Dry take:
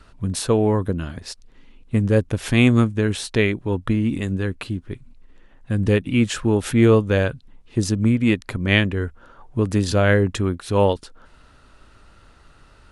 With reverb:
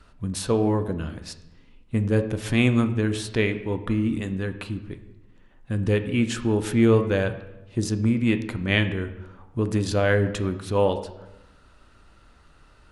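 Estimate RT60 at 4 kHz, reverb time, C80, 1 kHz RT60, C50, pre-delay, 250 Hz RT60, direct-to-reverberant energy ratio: 0.75 s, 0.95 s, 13.5 dB, 0.95 s, 12.0 dB, 3 ms, 1.1 s, 8.0 dB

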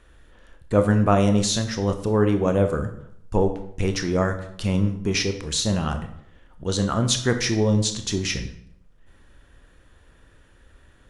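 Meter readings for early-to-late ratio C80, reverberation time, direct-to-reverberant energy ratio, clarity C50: 12.5 dB, 0.70 s, 6.5 dB, 10.0 dB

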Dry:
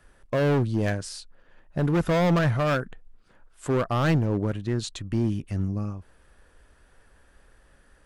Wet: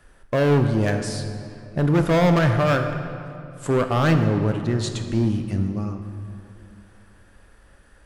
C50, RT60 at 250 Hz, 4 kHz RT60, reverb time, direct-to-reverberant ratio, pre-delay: 7.0 dB, 2.8 s, 1.7 s, 2.7 s, 6.0 dB, 18 ms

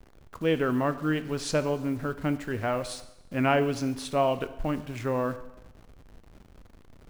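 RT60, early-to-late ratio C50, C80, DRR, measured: 1.0 s, 14.0 dB, 16.0 dB, 11.5 dB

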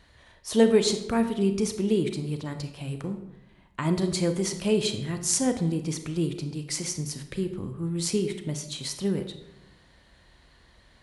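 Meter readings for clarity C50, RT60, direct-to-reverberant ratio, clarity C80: 9.5 dB, 0.90 s, 7.5 dB, 12.0 dB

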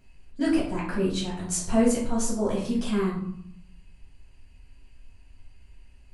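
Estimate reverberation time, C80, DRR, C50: 0.70 s, 8.5 dB, -6.5 dB, 4.5 dB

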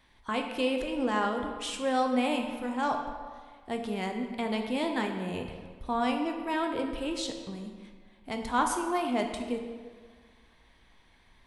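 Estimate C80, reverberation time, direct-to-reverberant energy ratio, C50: 7.0 dB, 1.7 s, 3.5 dB, 5.5 dB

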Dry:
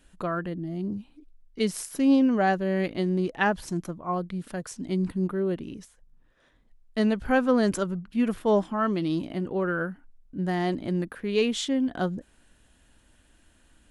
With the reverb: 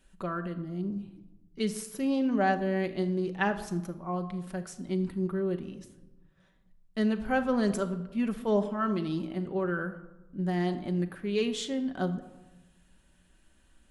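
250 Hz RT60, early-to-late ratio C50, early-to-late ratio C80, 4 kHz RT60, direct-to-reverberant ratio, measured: 1.4 s, 12.5 dB, 14.5 dB, 0.65 s, 6.0 dB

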